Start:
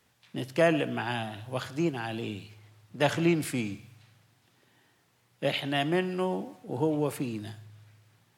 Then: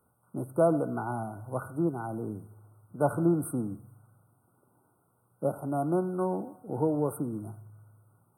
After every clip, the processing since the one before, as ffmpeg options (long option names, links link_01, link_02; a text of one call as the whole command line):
ffmpeg -i in.wav -af "afftfilt=real='re*(1-between(b*sr/4096,1500,8200))':imag='im*(1-between(b*sr/4096,1500,8200))':win_size=4096:overlap=0.75" out.wav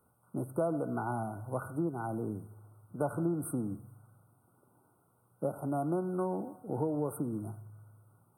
ffmpeg -i in.wav -af "acompressor=threshold=-30dB:ratio=3" out.wav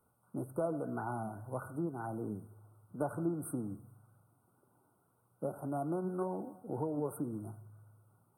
ffmpeg -i in.wav -af "flanger=delay=0.9:depth=4.7:regen=77:speed=1.9:shape=triangular,volume=1dB" out.wav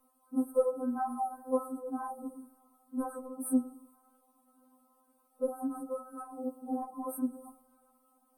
ffmpeg -i in.wav -af "afftfilt=real='re*3.46*eq(mod(b,12),0)':imag='im*3.46*eq(mod(b,12),0)':win_size=2048:overlap=0.75,volume=8dB" out.wav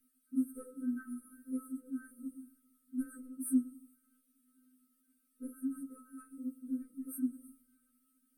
ffmpeg -i in.wav -af "asuperstop=centerf=790:order=20:qfactor=0.86,volume=-1.5dB" out.wav